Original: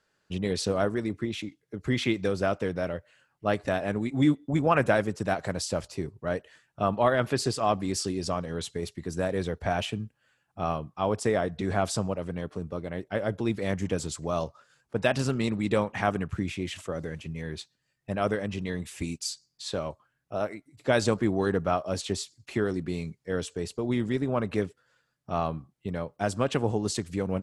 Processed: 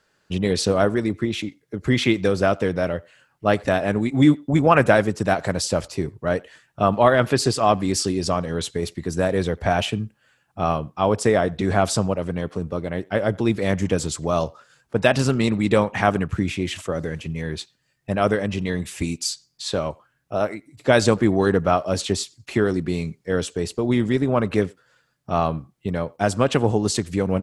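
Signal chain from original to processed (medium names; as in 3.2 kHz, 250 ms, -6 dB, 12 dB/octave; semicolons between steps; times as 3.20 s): speakerphone echo 90 ms, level -25 dB; trim +7.5 dB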